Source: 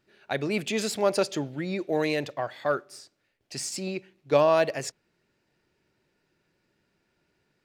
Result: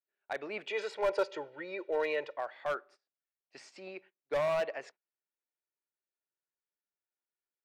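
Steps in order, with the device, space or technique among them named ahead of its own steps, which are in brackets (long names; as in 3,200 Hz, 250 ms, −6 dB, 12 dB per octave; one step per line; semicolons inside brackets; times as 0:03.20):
walkie-talkie (band-pass filter 560–2,200 Hz; hard clipping −22.5 dBFS, distortion −10 dB; noise gate −51 dBFS, range −22 dB)
0:00.67–0:02.37: comb filter 2.1 ms, depth 97%
level −4.5 dB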